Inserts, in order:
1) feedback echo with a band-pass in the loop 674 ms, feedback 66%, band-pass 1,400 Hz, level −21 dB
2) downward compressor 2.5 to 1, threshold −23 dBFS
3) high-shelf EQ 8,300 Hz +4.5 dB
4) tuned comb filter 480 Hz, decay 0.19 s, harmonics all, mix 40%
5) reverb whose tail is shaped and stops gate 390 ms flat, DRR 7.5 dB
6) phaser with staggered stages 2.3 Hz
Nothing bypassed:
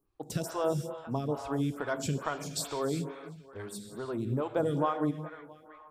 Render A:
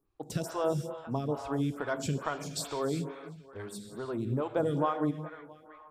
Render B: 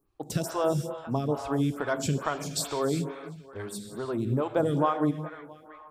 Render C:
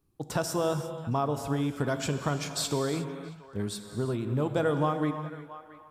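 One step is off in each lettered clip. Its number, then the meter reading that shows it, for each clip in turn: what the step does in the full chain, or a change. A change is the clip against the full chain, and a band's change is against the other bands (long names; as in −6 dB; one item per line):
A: 3, 8 kHz band −2.0 dB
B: 4, change in integrated loudness +4.0 LU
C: 6, change in momentary loudness spread −3 LU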